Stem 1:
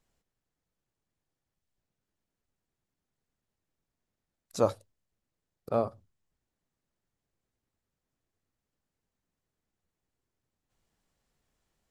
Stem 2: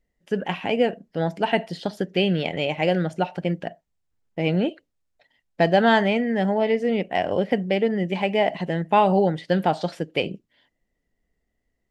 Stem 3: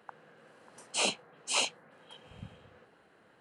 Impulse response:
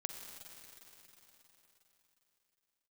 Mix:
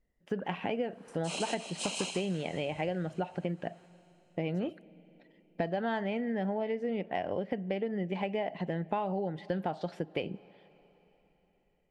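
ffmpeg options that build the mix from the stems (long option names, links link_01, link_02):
-filter_complex "[0:a]volume=-19dB[link_01];[1:a]highshelf=frequency=3700:gain=-11,volume=-3dB,asplit=3[link_02][link_03][link_04];[link_03]volume=-21dB[link_05];[2:a]adelay=300,volume=0dB,asplit=3[link_06][link_07][link_08];[link_07]volume=-8.5dB[link_09];[link_08]volume=-3dB[link_10];[link_04]apad=whole_len=163312[link_11];[link_06][link_11]sidechaincompress=threshold=-31dB:ratio=8:attack=16:release=1080[link_12];[3:a]atrim=start_sample=2205[link_13];[link_05][link_09]amix=inputs=2:normalize=0[link_14];[link_14][link_13]afir=irnorm=-1:irlink=0[link_15];[link_10]aecho=0:1:155|310|465|620|775|930:1|0.41|0.168|0.0689|0.0283|0.0116[link_16];[link_01][link_02][link_12][link_15][link_16]amix=inputs=5:normalize=0,acompressor=threshold=-30dB:ratio=6"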